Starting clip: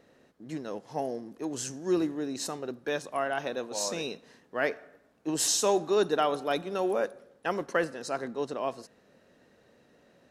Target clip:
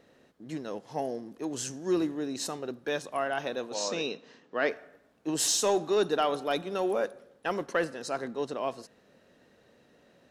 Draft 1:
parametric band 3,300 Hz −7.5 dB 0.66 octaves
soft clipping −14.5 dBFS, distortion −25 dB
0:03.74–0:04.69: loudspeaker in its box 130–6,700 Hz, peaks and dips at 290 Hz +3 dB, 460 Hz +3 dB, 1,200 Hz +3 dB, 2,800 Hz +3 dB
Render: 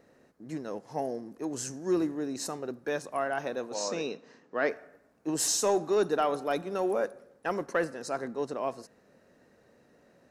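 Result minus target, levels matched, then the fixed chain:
4,000 Hz band −4.0 dB
parametric band 3,300 Hz +2.5 dB 0.66 octaves
soft clipping −14.5 dBFS, distortion −25 dB
0:03.74–0:04.69: loudspeaker in its box 130–6,700 Hz, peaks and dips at 290 Hz +3 dB, 460 Hz +3 dB, 1,200 Hz +3 dB, 2,800 Hz +3 dB

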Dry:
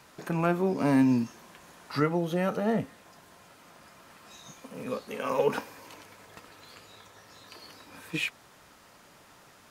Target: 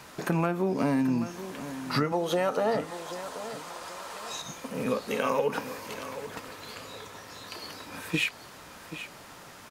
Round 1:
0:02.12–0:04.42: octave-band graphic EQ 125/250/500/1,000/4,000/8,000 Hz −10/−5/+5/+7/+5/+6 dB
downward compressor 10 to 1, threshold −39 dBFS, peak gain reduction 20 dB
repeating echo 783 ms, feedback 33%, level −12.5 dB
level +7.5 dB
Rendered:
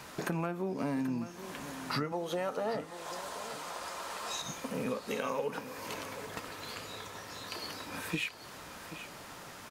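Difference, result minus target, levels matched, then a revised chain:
downward compressor: peak gain reduction +7.5 dB
0:02.12–0:04.42: octave-band graphic EQ 125/250/500/1,000/4,000/8,000 Hz −10/−5/+5/+7/+5/+6 dB
downward compressor 10 to 1, threshold −30.5 dBFS, peak gain reduction 12.5 dB
repeating echo 783 ms, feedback 33%, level −12.5 dB
level +7.5 dB

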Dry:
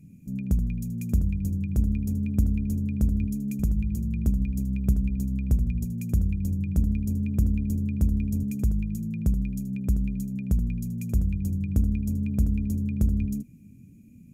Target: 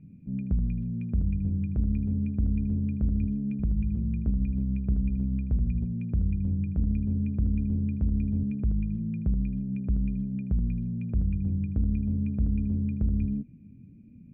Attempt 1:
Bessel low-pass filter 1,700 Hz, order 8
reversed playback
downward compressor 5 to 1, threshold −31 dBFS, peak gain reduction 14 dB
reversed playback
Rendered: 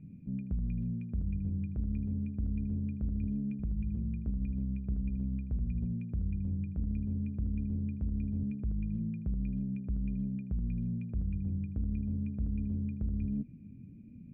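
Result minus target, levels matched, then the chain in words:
downward compressor: peak gain reduction +8 dB
Bessel low-pass filter 1,700 Hz, order 8
reversed playback
downward compressor 5 to 1, threshold −21 dBFS, peak gain reduction 6 dB
reversed playback

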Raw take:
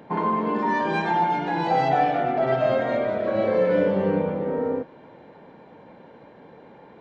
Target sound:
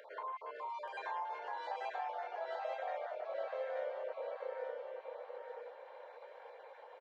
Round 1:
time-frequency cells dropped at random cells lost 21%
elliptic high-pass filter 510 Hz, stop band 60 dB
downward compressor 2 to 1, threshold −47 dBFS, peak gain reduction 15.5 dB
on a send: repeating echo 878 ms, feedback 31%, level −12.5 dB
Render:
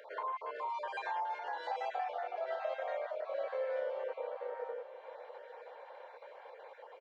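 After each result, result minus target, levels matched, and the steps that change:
echo-to-direct −9.5 dB; downward compressor: peak gain reduction −4.5 dB
change: repeating echo 878 ms, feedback 31%, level −3 dB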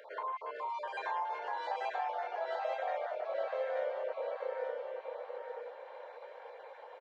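downward compressor: peak gain reduction −4.5 dB
change: downward compressor 2 to 1, threshold −56 dBFS, peak gain reduction 20 dB

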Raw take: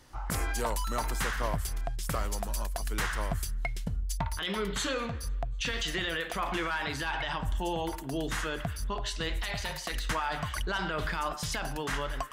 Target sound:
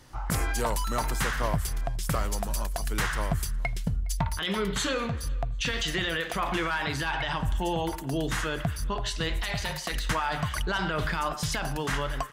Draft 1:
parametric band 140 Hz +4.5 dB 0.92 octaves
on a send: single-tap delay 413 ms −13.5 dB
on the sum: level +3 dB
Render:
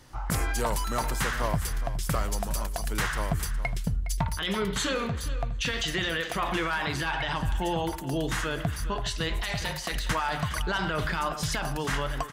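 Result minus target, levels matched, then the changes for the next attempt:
echo-to-direct +10.5 dB
change: single-tap delay 413 ms −24 dB

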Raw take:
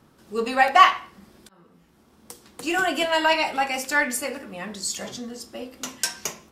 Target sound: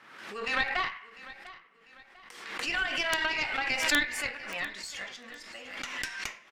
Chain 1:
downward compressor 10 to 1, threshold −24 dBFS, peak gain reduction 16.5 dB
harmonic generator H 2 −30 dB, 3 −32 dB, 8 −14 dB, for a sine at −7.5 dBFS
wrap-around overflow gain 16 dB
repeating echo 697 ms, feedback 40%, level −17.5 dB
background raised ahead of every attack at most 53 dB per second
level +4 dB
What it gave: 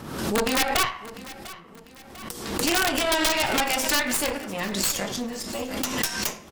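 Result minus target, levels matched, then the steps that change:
2,000 Hz band −5.0 dB
add after downward compressor: resonant band-pass 2,000 Hz, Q 2.2

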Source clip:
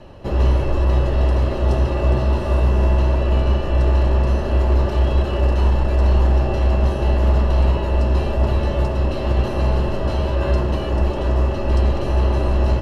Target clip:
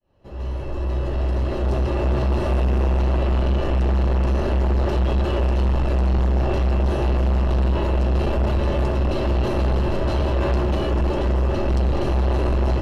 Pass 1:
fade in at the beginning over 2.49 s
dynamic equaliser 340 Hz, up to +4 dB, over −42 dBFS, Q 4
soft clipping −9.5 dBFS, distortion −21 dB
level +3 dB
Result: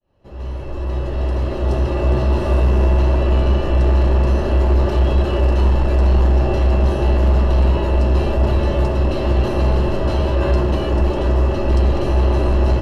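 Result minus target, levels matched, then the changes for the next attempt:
soft clipping: distortion −11 dB
change: soft clipping −19 dBFS, distortion −10 dB

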